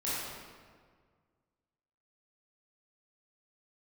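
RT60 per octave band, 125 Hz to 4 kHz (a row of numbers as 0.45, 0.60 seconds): 2.2, 1.9, 1.8, 1.7, 1.4, 1.1 seconds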